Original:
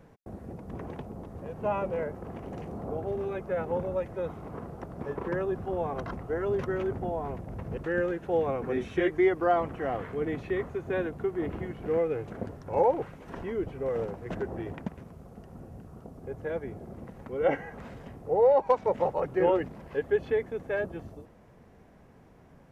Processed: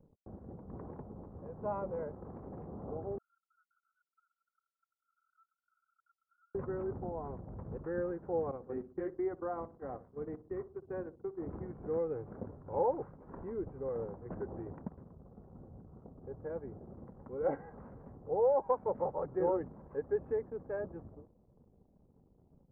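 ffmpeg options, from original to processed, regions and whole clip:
-filter_complex "[0:a]asettb=1/sr,asplit=3[a][b][c];[a]atrim=end=3.184[d];[b]atrim=start=3.18:end=6.55,asetpts=PTS-STARTPTS,afade=t=in:d=0.004:c=qsin,afade=t=out:st=3.366:d=0.004:c=qsin,asoftclip=type=hard:threshold=-30.5dB,asuperpass=centerf=1400:order=8:qfactor=7.1,acompressor=threshold=-56dB:ratio=3:attack=3.2:release=140:knee=1:detection=peak[e];[c]atrim=start=6.546[f];[d][e]acrossfade=d=0.004:c1=hsin:c2=qsin[g];[g][f]acrossfade=d=0.004:c1=qsin:c2=hsin,asettb=1/sr,asplit=3[h][i][j];[h]atrim=end=8.514[k];[i]atrim=start=8.51:end=11.47,asetpts=PTS-STARTPTS,afade=t=in:d=0.004:c=qsin,afade=t=out:st=2.956:d=0.004:c=qsin,acompressor=threshold=-32dB:ratio=1.5:attack=3.2:release=140:knee=1:detection=peak,agate=range=-14dB:threshold=-34dB:ratio=16:release=100:detection=peak,asplit=2[l][m];[m]adelay=62,lowpass=f=830:p=1,volume=-14dB,asplit=2[n][o];[o]adelay=62,lowpass=f=830:p=1,volume=0.46,asplit=2[p][q];[q]adelay=62,lowpass=f=830:p=1,volume=0.46,asplit=2[r][s];[s]adelay=62,lowpass=f=830:p=1,volume=0.46[t];[l][n][p][r][t]amix=inputs=5:normalize=0,atrim=end_sample=130536[u];[j]atrim=start=11.466[v];[k][u]acrossfade=d=0.004:c1=hsin:c2=qsin[w];[w][v]acrossfade=d=0.004:c1=qsin:c2=hsin,lowpass=f=1.3k:w=0.5412,lowpass=f=1.3k:w=1.3066,anlmdn=0.00158,bandreject=f=680:w=13,volume=-7dB"

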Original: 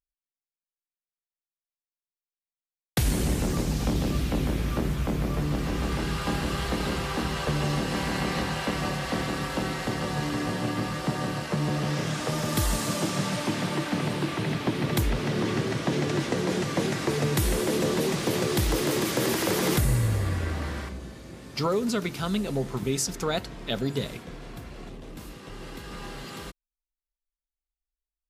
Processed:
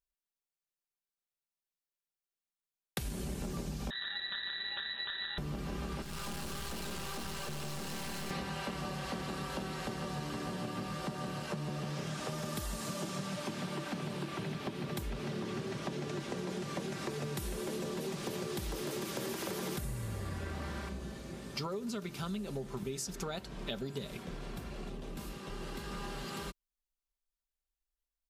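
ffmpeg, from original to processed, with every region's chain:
-filter_complex "[0:a]asettb=1/sr,asplit=3[a][b][c];[a]atrim=end=3.904[d];[b]atrim=start=3.9:end=5.38,asetpts=PTS-STARTPTS,afade=t=in:d=0.004:c=qsin,afade=t=out:st=1.476:d=0.004:c=qsin,lowpass=f=2.6k:t=q:w=0.5098,lowpass=f=2.6k:t=q:w=0.6013,lowpass=f=2.6k:t=q:w=0.9,lowpass=f=2.6k:t=q:w=2.563,afreqshift=-3000,aeval=exprs='val(0)*sin(2*PI*1000*n/s)':c=same[e];[c]atrim=start=5.376[f];[d][e]acrossfade=d=0.004:c1=hsin:c2=qsin[g];[g][f]acrossfade=d=0.004:c1=qsin:c2=hsin,asettb=1/sr,asplit=3[h][i][j];[h]atrim=end=6.024[k];[i]atrim=start=6.02:end=8.31,asetpts=PTS-STARTPTS,afade=t=in:d=0.004:c=qsin,afade=t=out:st=2.286:d=0.004:c=qsin,highshelf=f=4.6k:g=10,aeval=exprs='(tanh(56.2*val(0)+0.7)-tanh(0.7))/56.2':c=same[l];[j]atrim=start=8.306[m];[k][l]acrossfade=d=0.004:c1=hsin:c2=qsin[n];[n][m]acrossfade=d=0.004:c1=qsin:c2=hsin,equalizer=f=2k:w=6:g=-3.5,aecho=1:1:5.1:0.37,acompressor=threshold=-34dB:ratio=6,volume=-2dB"

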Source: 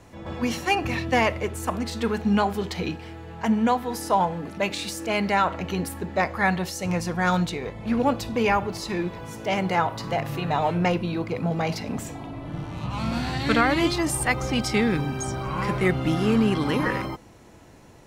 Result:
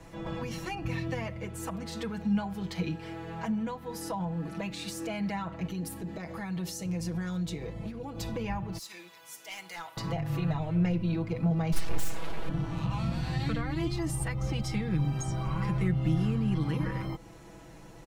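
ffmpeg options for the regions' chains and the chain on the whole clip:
-filter_complex "[0:a]asettb=1/sr,asplit=3[a][b][c];[a]atrim=end=5.674[d];[b]atrim=start=5.67:end=8.21,asetpts=PTS-STARTPTS,afade=t=in:d=0.004:c=qsin,afade=t=out:st=2.536:d=0.004:c=qsin,equalizer=f=1.4k:w=0.47:g=-7.5,acompressor=threshold=-30dB:ratio=6:attack=3.2:release=140:knee=1:detection=peak[e];[c]atrim=start=8.206[f];[d][e]acrossfade=d=0.004:c1=hsin:c2=qsin[g];[g][f]acrossfade=d=0.004:c1=qsin:c2=hsin,asettb=1/sr,asplit=3[h][i][j];[h]atrim=end=8.784[k];[i]atrim=start=8.78:end=9.97,asetpts=PTS-STARTPTS,afade=t=in:d=0.004:c=qsin,afade=t=out:st=1.186:d=0.004:c=qsin,aderivative,volume=34dB,asoftclip=hard,volume=-34dB[l];[j]atrim=start=9.966[m];[k][l]acrossfade=d=0.004:c1=hsin:c2=qsin[n];[n][m]acrossfade=d=0.004:c1=qsin:c2=hsin,asettb=1/sr,asplit=3[o][p][q];[o]atrim=end=11.724[r];[p]atrim=start=11.72:end=12.49,asetpts=PTS-STARTPTS,afade=t=in:d=0.004:c=qsin,afade=t=out:st=0.766:d=0.004:c=qsin,highshelf=f=4.1k:g=10,aecho=1:1:6.1:0.75,atrim=end_sample=33957,aeval=exprs='abs(val(0))':c=same[s];[q]atrim=start=12.486[t];[r][s]acrossfade=d=0.004:c1=hsin:c2=qsin[u];[u][t]acrossfade=d=0.004:c1=qsin:c2=hsin,acrossover=split=180[v][w];[w]acompressor=threshold=-36dB:ratio=5[x];[v][x]amix=inputs=2:normalize=0,lowshelf=f=67:g=7.5,aecho=1:1:6.1:0.71,volume=-2.5dB"

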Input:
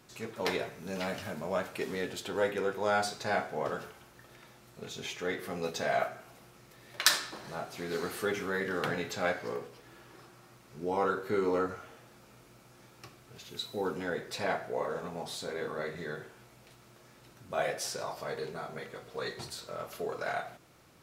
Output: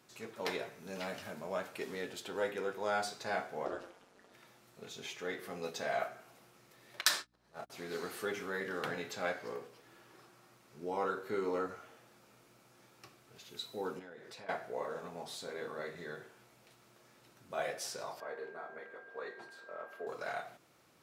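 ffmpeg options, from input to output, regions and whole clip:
-filter_complex "[0:a]asettb=1/sr,asplit=3[a][b][c];[a]atrim=end=3.654[d];[b]atrim=start=3.65:end=4.34,asetpts=PTS-STARTPTS,afade=t=in:d=0.004:c=qsin,afade=t=out:st=0.686:d=0.004:c=qsin,lowpass=9.2k,equalizer=f=500:t=o:w=1.2:g=6.5,aeval=exprs='val(0)*sin(2*PI*93*n/s)':c=same[e];[c]atrim=start=4.336[f];[d][e]acrossfade=d=0.004:c1=hsin:c2=qsin[g];[g][f]acrossfade=d=0.004:c1=qsin:c2=hsin,asettb=1/sr,asplit=3[h][i][j];[h]atrim=end=7.014[k];[i]atrim=start=7.01:end=7.7,asetpts=PTS-STARTPTS,afade=t=in:d=0.004:c=qsin,afade=t=out:st=0.686:d=0.004:c=qsin,agate=range=-47dB:threshold=-38dB:ratio=16:release=100:detection=peak,acompressor=mode=upward:threshold=-39dB:ratio=2.5:attack=3.2:release=140:knee=2.83:detection=peak,aeval=exprs='val(0)+0.000562*(sin(2*PI*60*n/s)+sin(2*PI*2*60*n/s)/2+sin(2*PI*3*60*n/s)/3+sin(2*PI*4*60*n/s)/4+sin(2*PI*5*60*n/s)/5)':c=same[l];[j]atrim=start=7.696[m];[k][l]acrossfade=d=0.004:c1=hsin:c2=qsin[n];[n][m]acrossfade=d=0.004:c1=qsin:c2=hsin,asettb=1/sr,asplit=3[o][p][q];[o]atrim=end=13.994[r];[p]atrim=start=13.99:end=14.49,asetpts=PTS-STARTPTS,afade=t=in:d=0.004:c=qsin,afade=t=out:st=0.496:d=0.004:c=qsin,highshelf=f=7.6k:g=-7.5,acompressor=threshold=-42dB:ratio=6:attack=3.2:release=140:knee=1:detection=peak[s];[q]atrim=start=14.486[t];[r][s]acrossfade=d=0.004:c1=hsin:c2=qsin[u];[u][t]acrossfade=d=0.004:c1=qsin:c2=hsin,asettb=1/sr,asplit=3[v][w][x];[v]atrim=end=18.204[y];[w]atrim=start=18.2:end=20.07,asetpts=PTS-STARTPTS,afade=t=in:d=0.004:c=qsin,afade=t=out:st=1.866:d=0.004:c=qsin,acrossover=split=250 2300:gain=0.126 1 0.141[z][aa][ab];[z][aa][ab]amix=inputs=3:normalize=0,aeval=exprs='val(0)+0.00398*sin(2*PI*1600*n/s)':c=same,highpass=96[ac];[x]atrim=start=20.066[ad];[y][ac]acrossfade=d=0.004:c1=hsin:c2=qsin[ae];[ae][ad]acrossfade=d=0.004:c1=qsin:c2=hsin,highpass=f=110:p=1,lowshelf=f=150:g=-4.5,volume=-5dB"

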